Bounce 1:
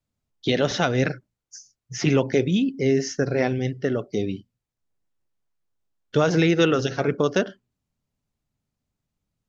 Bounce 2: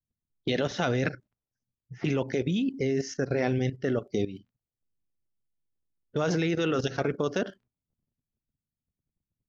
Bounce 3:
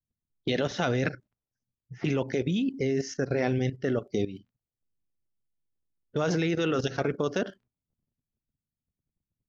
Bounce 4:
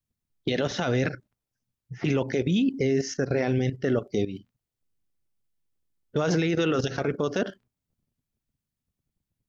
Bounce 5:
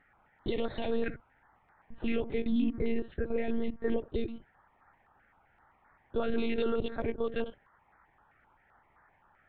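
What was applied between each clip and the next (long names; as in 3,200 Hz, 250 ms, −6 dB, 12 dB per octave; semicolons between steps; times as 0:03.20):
surface crackle 23 per second −54 dBFS; output level in coarse steps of 13 dB; low-pass that shuts in the quiet parts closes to 310 Hz, open at −28.5 dBFS
no processing that can be heard
brickwall limiter −20 dBFS, peak gain reduction 7.5 dB; level +4.5 dB
noise in a band 640–1,900 Hz −58 dBFS; one-pitch LPC vocoder at 8 kHz 230 Hz; notch on a step sequencer 7.7 Hz 970–2,900 Hz; level −4.5 dB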